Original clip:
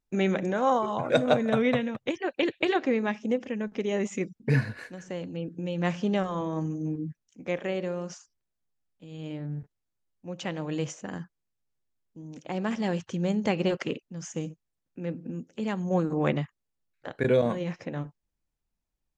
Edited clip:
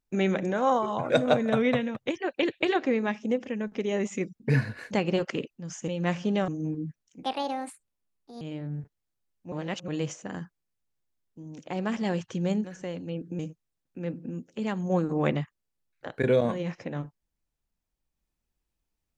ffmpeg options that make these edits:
-filter_complex "[0:a]asplit=10[a][b][c][d][e][f][g][h][i][j];[a]atrim=end=4.912[k];[b]atrim=start=13.428:end=14.402[l];[c]atrim=start=5.658:end=6.262[m];[d]atrim=start=6.688:end=7.444[n];[e]atrim=start=7.44:end=9.2,asetpts=PTS-STARTPTS,asetrate=65709,aresample=44100,atrim=end_sample=52091,asetpts=PTS-STARTPTS[o];[f]atrim=start=9.196:end=10.312[p];[g]atrim=start=10.308:end=10.672,asetpts=PTS-STARTPTS,areverse[q];[h]atrim=start=10.668:end=13.432[r];[i]atrim=start=4.908:end=5.662[s];[j]atrim=start=14.398[t];[k][l]acrossfade=d=0.004:c1=hsin:c2=hsin[u];[u][m]acrossfade=d=0.004:c1=hsin:c2=hsin[v];[v][n]acrossfade=d=0.004:c1=hsin:c2=hsin[w];[w][o]acrossfade=d=0.004:c1=hsin:c2=hsin[x];[x][p]acrossfade=d=0.004:c1=hsin:c2=hsin[y];[y][q]acrossfade=d=0.004:c1=hsin:c2=hsin[z];[z][r]acrossfade=d=0.004:c1=hsin:c2=hsin[aa];[aa][s]acrossfade=d=0.004:c1=hsin:c2=hsin[ab];[ab][t]acrossfade=d=0.004:c1=hsin:c2=hsin"

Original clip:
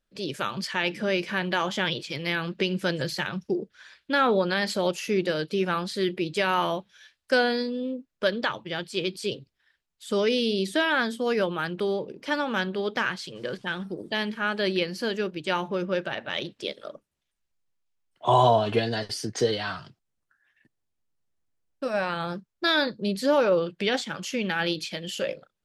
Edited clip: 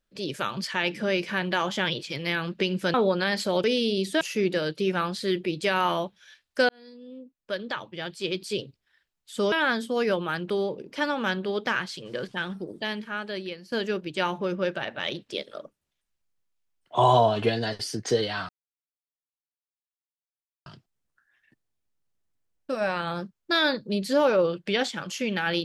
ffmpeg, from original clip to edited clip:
-filter_complex "[0:a]asplit=8[a][b][c][d][e][f][g][h];[a]atrim=end=2.942[i];[b]atrim=start=4.238:end=4.942[j];[c]atrim=start=10.248:end=10.822[k];[d]atrim=start=4.938:end=7.42,asetpts=PTS-STARTPTS,afade=t=out:st=2.478:d=0.004:c=hsin[l];[e]atrim=start=7.42:end=10.252,asetpts=PTS-STARTPTS,afade=t=in:d=1.84[m];[f]atrim=start=10.818:end=15.02,asetpts=PTS-STARTPTS,afade=t=out:st=2.932:d=1.27:silence=0.177828[n];[g]atrim=start=15.02:end=19.79,asetpts=PTS-STARTPTS,afade=t=in:d=0.004:c=hsin:silence=0.177828,afade=t=out:st=4.766:d=0.004:c=hsin,apad=pad_dur=2.17[o];[h]atrim=start=19.79,asetpts=PTS-STARTPTS,afade=t=in:d=0.004:c=hsin[p];[i][j]acrossfade=d=0.004:c1=hsin:c2=hsin[q];[q][k]acrossfade=d=0.004:c1=hsin:c2=hsin[r];[l][m]concat=n=2:v=0:a=1[s];[r][s]acrossfade=d=0.004:c1=hsin:c2=hsin[t];[n][o][p]concat=n=3:v=0:a=1[u];[t][u]acrossfade=d=0.004:c1=hsin:c2=hsin"

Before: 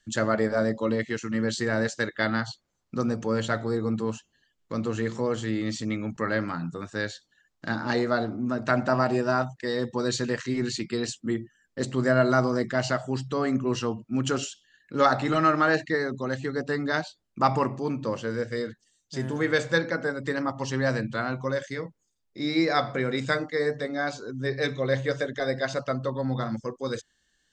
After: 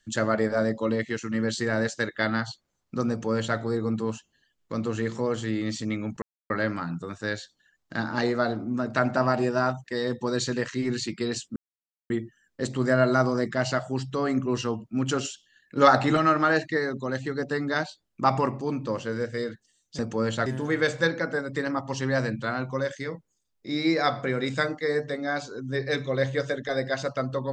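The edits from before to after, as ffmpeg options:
-filter_complex "[0:a]asplit=7[a][b][c][d][e][f][g];[a]atrim=end=6.22,asetpts=PTS-STARTPTS,afade=t=out:st=6.216:d=0.004:c=hsin,apad=pad_dur=0.28[h];[b]atrim=start=6.22:end=11.28,asetpts=PTS-STARTPTS,afade=t=in:d=0.004:c=hsin,afade=t=out:st=5.056:d=0.004:c=hsin,apad=pad_dur=0.54[i];[c]atrim=start=11.28:end=14.952,asetpts=PTS-STARTPTS,afade=t=in:d=0.004:c=hsin[j];[d]atrim=start=14.948:end=15.352,asetpts=PTS-STARTPTS,volume=3.5dB[k];[e]atrim=start=15.348:end=19.172[l];[f]atrim=start=3.098:end=3.572[m];[g]atrim=start=19.168[n];[h][i][j]concat=n=3:v=0:a=1[o];[o][k]acrossfade=d=0.004:c1=hsin:c2=hsin[p];[p][l]acrossfade=d=0.004:c1=hsin:c2=hsin[q];[q][m]acrossfade=d=0.004:c1=hsin:c2=hsin[r];[r][n]acrossfade=d=0.004:c1=hsin:c2=hsin"

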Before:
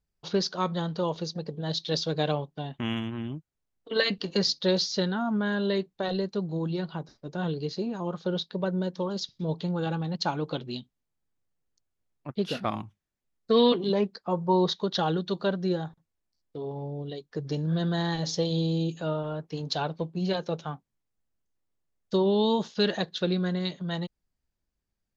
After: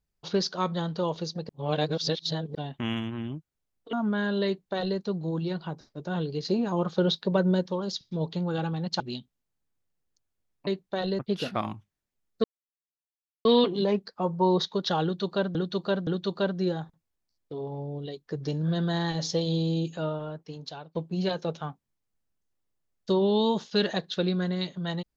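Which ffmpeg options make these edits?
-filter_complex "[0:a]asplit=13[a][b][c][d][e][f][g][h][i][j][k][l][m];[a]atrim=end=1.492[n];[b]atrim=start=1.488:end=2.552,asetpts=PTS-STARTPTS,areverse[o];[c]atrim=start=2.548:end=3.932[p];[d]atrim=start=5.208:end=7.732[q];[e]atrim=start=7.728:end=8.942,asetpts=PTS-STARTPTS,volume=5dB[r];[f]atrim=start=8.938:end=10.282[s];[g]atrim=start=10.608:end=12.282[t];[h]atrim=start=5.738:end=6.262[u];[i]atrim=start=12.278:end=13.53,asetpts=PTS-STARTPTS,afade=t=out:st=1.248:d=0.004:c=hsin,apad=pad_dur=1.01[v];[j]atrim=start=13.53:end=15.632,asetpts=PTS-STARTPTS,afade=t=in:d=0.004:c=hsin[w];[k]atrim=start=15.108:end=15.632[x];[l]atrim=start=15.108:end=19.99,asetpts=PTS-STARTPTS,afade=t=out:st=3.892:d=0.99:silence=0.0944061[y];[m]atrim=start=19.99,asetpts=PTS-STARTPTS,afade=t=in:d=0.004:c=hsin:silence=0.0944061[z];[n][o]acrossfade=d=0.004:c1=hsin:c2=hsin[aa];[aa][p]acrossfade=d=0.004:c1=hsin:c2=hsin[ab];[ab][q]acrossfade=d=0.004:c1=hsin:c2=hsin[ac];[ac][r]acrossfade=d=0.004:c1=hsin:c2=hsin[ad];[ad][s]acrossfade=d=0.004:c1=hsin:c2=hsin[ae];[ae][t]acrossfade=d=0.004:c1=hsin:c2=hsin[af];[af][u]acrossfade=d=0.004:c1=hsin:c2=hsin[ag];[v][w]concat=n=2:v=0:a=1[ah];[ag][ah]acrossfade=d=0.004:c1=hsin:c2=hsin[ai];[ai][x]acrossfade=d=0.004:c1=hsin:c2=hsin[aj];[y][z]concat=n=2:v=0:a=1[ak];[aj][ak]acrossfade=d=0.004:c1=hsin:c2=hsin"

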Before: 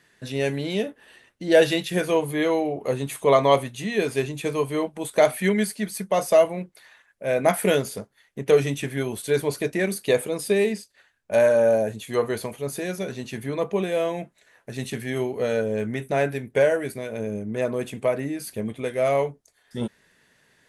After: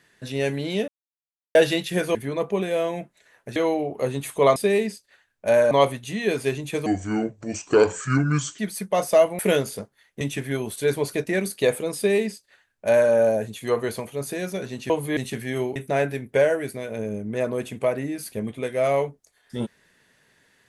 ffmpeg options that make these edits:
-filter_complex "[0:a]asplit=14[a][b][c][d][e][f][g][h][i][j][k][l][m][n];[a]atrim=end=0.88,asetpts=PTS-STARTPTS,afade=t=out:st=0.876:d=0.004:c=hsin[o];[b]atrim=start=0.88:end=1.55,asetpts=PTS-STARTPTS,volume=0[p];[c]atrim=start=1.55:end=2.152,asetpts=PTS-STARTPTS,afade=t=in:d=0.004:c=hsin[q];[d]atrim=start=13.358:end=14.772[r];[e]atrim=start=2.418:end=3.422[s];[f]atrim=start=10.418:end=11.572[t];[g]atrim=start=3.418:end=4.574[u];[h]atrim=start=4.57:end=5.78,asetpts=PTS-STARTPTS,asetrate=30870,aresample=44100[v];[i]atrim=start=5.776:end=6.582[w];[j]atrim=start=7.578:end=8.402[x];[k]atrim=start=8.668:end=13.362[y];[l]atrim=start=2.148:end=2.422[z];[m]atrim=start=14.768:end=15.362[aa];[n]atrim=start=15.968[ab];[o][p][q]concat=n=3:v=0:a=1[ac];[ac][r]acrossfade=d=0.004:c1=hsin:c2=hsin[ad];[ad][s]acrossfade=d=0.004:c1=hsin:c2=hsin[ae];[ae][t]acrossfade=d=0.004:c1=hsin:c2=hsin[af];[af][u]acrossfade=d=0.004:c1=hsin:c2=hsin[ag];[ag][v]acrossfade=d=0.004:c1=hsin:c2=hsin[ah];[ah][w]acrossfade=d=0.004:c1=hsin:c2=hsin[ai];[ai][x]acrossfade=d=0.004:c1=hsin:c2=hsin[aj];[aj][y]acrossfade=d=0.004:c1=hsin:c2=hsin[ak];[ak][z]acrossfade=d=0.004:c1=hsin:c2=hsin[al];[al][aa]acrossfade=d=0.004:c1=hsin:c2=hsin[am];[am][ab]acrossfade=d=0.004:c1=hsin:c2=hsin"

